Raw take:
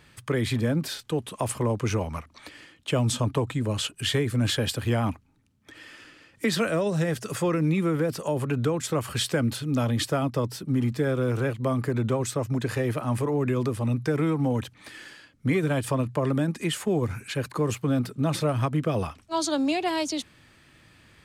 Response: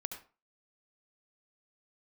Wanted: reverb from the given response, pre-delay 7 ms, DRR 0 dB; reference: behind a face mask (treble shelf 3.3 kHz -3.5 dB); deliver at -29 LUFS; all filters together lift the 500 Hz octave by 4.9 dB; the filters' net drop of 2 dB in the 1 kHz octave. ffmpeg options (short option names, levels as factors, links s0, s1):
-filter_complex "[0:a]equalizer=f=500:t=o:g=7,equalizer=f=1000:t=o:g=-5,asplit=2[s0][s1];[1:a]atrim=start_sample=2205,adelay=7[s2];[s1][s2]afir=irnorm=-1:irlink=0,volume=1.12[s3];[s0][s3]amix=inputs=2:normalize=0,highshelf=f=3300:g=-3.5,volume=0.422"